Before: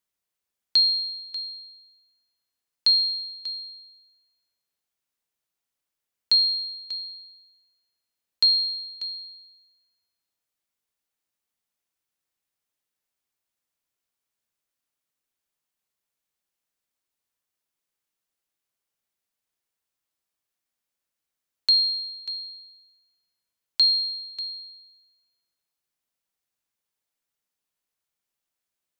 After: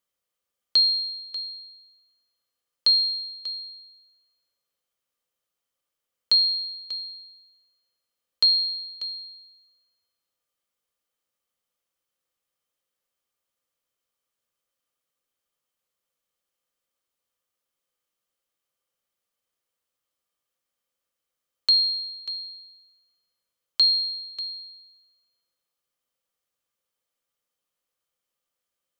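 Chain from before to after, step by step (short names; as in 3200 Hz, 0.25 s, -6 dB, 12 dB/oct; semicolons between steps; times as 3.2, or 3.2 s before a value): small resonant body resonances 520/1200/3100 Hz, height 11 dB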